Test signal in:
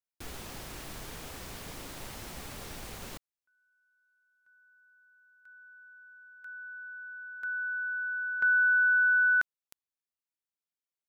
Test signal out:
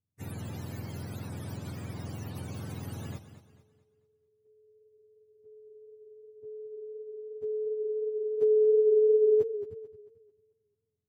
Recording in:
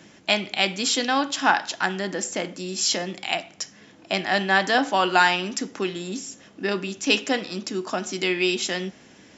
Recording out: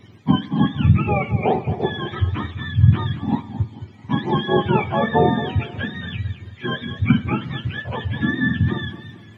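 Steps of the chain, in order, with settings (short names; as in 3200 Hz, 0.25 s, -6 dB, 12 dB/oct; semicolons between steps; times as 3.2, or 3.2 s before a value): spectrum mirrored in octaves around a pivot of 800 Hz; warbling echo 0.221 s, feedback 37%, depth 95 cents, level -12.5 dB; gain +1.5 dB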